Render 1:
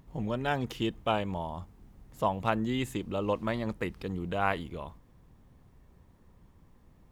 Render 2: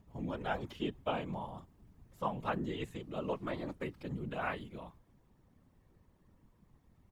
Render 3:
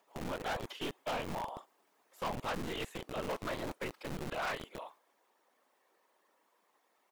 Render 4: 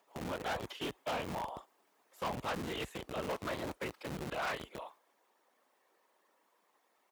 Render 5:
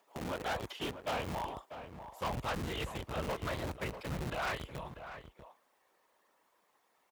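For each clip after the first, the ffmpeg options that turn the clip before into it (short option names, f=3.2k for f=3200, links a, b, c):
-filter_complex "[0:a]aecho=1:1:5.5:0.65,afftfilt=real='hypot(re,im)*cos(2*PI*random(0))':imag='hypot(re,im)*sin(2*PI*random(1))':win_size=512:overlap=0.75,acrossover=split=3900[a][b];[b]acompressor=threshold=-59dB:ratio=4:attack=1:release=60[c];[a][c]amix=inputs=2:normalize=0,volume=-2.5dB"
-filter_complex "[0:a]acrossover=split=470[a][b];[a]acrusher=bits=4:dc=4:mix=0:aa=0.000001[c];[c][b]amix=inputs=2:normalize=0,asoftclip=type=hard:threshold=-38.5dB,volume=5.5dB"
-af "highpass=f=43:w=0.5412,highpass=f=43:w=1.3066"
-filter_complex "[0:a]asubboost=boost=4:cutoff=130,asplit=2[a][b];[b]adelay=641.4,volume=-10dB,highshelf=f=4k:g=-14.4[c];[a][c]amix=inputs=2:normalize=0,volume=1dB"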